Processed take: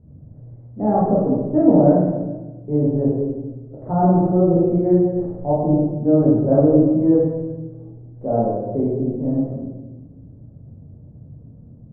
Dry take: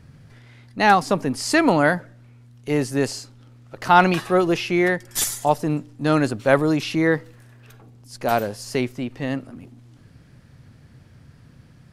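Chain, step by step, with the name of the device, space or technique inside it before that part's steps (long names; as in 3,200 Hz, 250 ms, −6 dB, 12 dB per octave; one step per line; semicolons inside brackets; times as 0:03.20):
next room (low-pass filter 610 Hz 24 dB per octave; convolution reverb RT60 1.2 s, pre-delay 13 ms, DRR −7.5 dB)
level −3 dB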